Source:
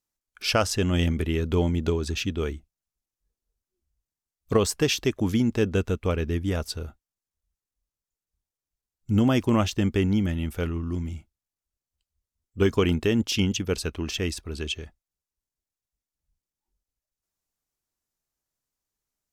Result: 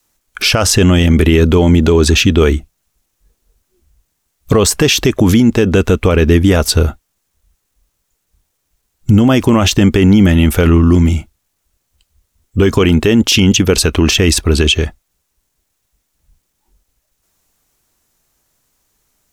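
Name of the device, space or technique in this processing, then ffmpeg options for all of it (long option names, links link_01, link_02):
mastering chain: -af "adynamicequalizer=threshold=0.0158:dfrequency=110:dqfactor=1.2:tfrequency=110:tqfactor=1.2:attack=5:release=100:ratio=0.375:range=2.5:mode=cutabove:tftype=bell,equalizer=frequency=4900:width_type=o:width=0.32:gain=-2.5,acompressor=threshold=-24dB:ratio=3,alimiter=level_in=24.5dB:limit=-1dB:release=50:level=0:latency=1,volume=-1dB"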